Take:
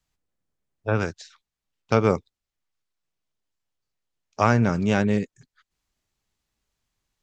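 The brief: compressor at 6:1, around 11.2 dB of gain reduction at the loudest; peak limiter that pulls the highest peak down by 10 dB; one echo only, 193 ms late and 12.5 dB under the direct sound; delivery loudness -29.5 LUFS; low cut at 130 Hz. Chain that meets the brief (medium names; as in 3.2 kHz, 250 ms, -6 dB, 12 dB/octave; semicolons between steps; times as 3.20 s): high-pass 130 Hz; compression 6:1, threshold -26 dBFS; peak limiter -19.5 dBFS; delay 193 ms -12.5 dB; trim +4.5 dB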